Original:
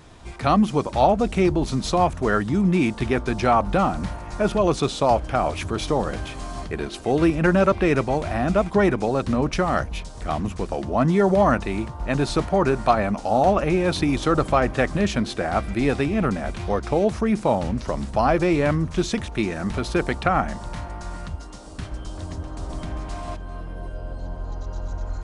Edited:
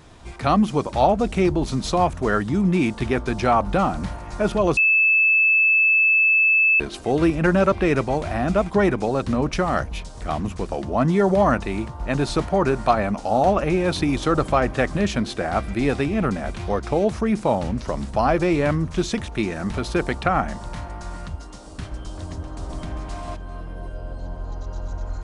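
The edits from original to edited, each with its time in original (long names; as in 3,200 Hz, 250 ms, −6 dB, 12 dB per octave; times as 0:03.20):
0:04.77–0:06.80: beep over 2,620 Hz −13.5 dBFS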